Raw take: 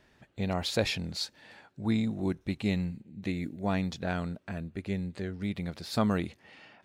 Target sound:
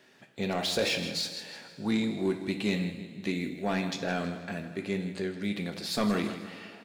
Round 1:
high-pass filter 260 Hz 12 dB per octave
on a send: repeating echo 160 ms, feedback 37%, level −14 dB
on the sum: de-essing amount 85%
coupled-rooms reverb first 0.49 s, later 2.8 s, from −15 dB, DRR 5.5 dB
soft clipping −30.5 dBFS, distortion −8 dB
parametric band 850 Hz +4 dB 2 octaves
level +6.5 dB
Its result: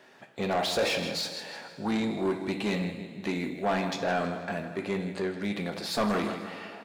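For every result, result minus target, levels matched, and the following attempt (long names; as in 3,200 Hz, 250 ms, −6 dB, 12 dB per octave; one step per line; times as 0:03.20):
1,000 Hz band +5.0 dB; soft clipping: distortion +6 dB
high-pass filter 260 Hz 12 dB per octave
on a send: repeating echo 160 ms, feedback 37%, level −14 dB
on the sum: de-essing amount 85%
coupled-rooms reverb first 0.49 s, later 2.8 s, from −15 dB, DRR 5.5 dB
soft clipping −30.5 dBFS, distortion −8 dB
parametric band 850 Hz −5 dB 2 octaves
level +6.5 dB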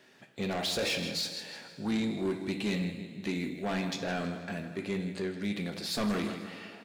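soft clipping: distortion +6 dB
high-pass filter 260 Hz 12 dB per octave
on a send: repeating echo 160 ms, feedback 37%, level −14 dB
on the sum: de-essing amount 85%
coupled-rooms reverb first 0.49 s, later 2.8 s, from −15 dB, DRR 5.5 dB
soft clipping −23.5 dBFS, distortion −14 dB
parametric band 850 Hz −5 dB 2 octaves
level +6.5 dB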